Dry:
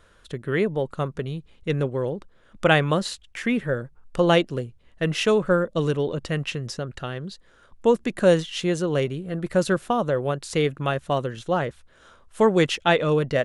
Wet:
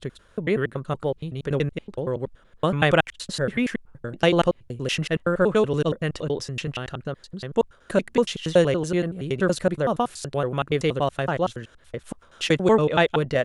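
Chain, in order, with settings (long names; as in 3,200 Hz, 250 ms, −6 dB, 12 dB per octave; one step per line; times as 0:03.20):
slices reordered back to front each 94 ms, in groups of 4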